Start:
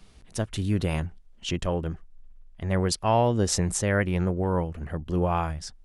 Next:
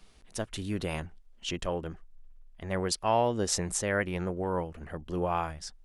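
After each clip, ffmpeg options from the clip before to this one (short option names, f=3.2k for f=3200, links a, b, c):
-af "equalizer=f=100:t=o:w=2.3:g=-8.5,volume=-2.5dB"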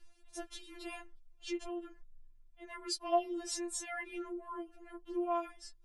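-af "afftfilt=real='re*4*eq(mod(b,16),0)':imag='im*4*eq(mod(b,16),0)':win_size=2048:overlap=0.75,volume=-6dB"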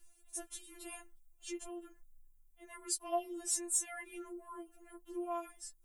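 -af "aexciter=amount=2.8:drive=9.9:freq=6.8k,volume=-5dB"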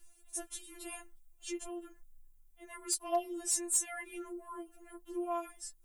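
-af "aeval=exprs='0.0562*(abs(mod(val(0)/0.0562+3,4)-2)-1)':c=same,volume=3dB"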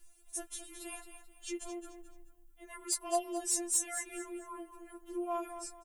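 -af "aecho=1:1:217|434|651:0.316|0.098|0.0304"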